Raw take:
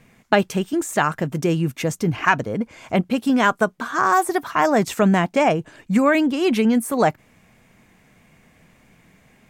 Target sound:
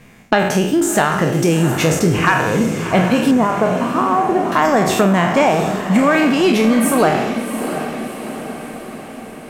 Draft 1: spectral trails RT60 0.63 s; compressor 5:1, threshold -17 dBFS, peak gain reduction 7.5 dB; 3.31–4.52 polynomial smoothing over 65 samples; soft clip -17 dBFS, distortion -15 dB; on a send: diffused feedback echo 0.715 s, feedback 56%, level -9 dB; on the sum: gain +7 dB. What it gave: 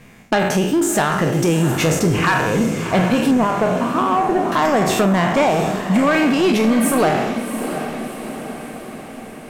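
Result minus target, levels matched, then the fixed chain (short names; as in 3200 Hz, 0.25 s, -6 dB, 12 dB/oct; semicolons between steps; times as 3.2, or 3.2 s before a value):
soft clip: distortion +12 dB
spectral trails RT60 0.63 s; compressor 5:1, threshold -17 dBFS, peak gain reduction 7.5 dB; 3.31–4.52 polynomial smoothing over 65 samples; soft clip -8.5 dBFS, distortion -26 dB; on a send: diffused feedback echo 0.715 s, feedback 56%, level -9 dB; on the sum: gain +7 dB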